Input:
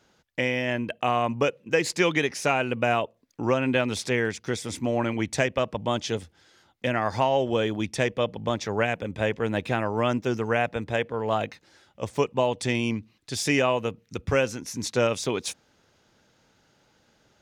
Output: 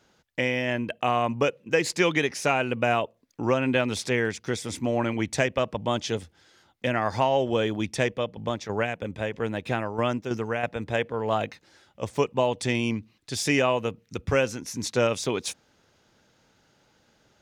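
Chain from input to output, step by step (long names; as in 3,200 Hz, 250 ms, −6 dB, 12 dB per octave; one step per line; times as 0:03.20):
0:08.05–0:10.80: shaped tremolo saw down 3.1 Hz, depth 55%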